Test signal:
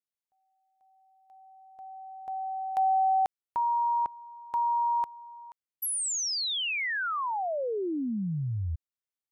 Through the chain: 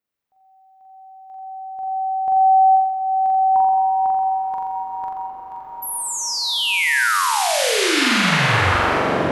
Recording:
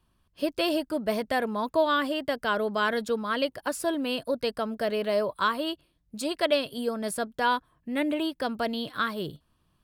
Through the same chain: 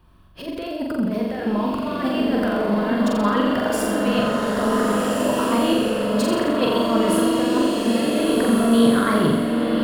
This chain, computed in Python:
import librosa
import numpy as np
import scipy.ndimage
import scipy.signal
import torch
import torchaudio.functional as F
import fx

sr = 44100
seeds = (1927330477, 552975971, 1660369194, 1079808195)

p1 = fx.peak_eq(x, sr, hz=9000.0, db=-11.5, octaves=2.6)
p2 = fx.over_compress(p1, sr, threshold_db=-33.0, ratio=-0.5)
p3 = p2 + fx.room_flutter(p2, sr, wall_m=7.4, rt60_s=1.0, dry=0)
p4 = fx.rev_bloom(p3, sr, seeds[0], attack_ms=1650, drr_db=-1.5)
y = F.gain(torch.from_numpy(p4), 8.5).numpy()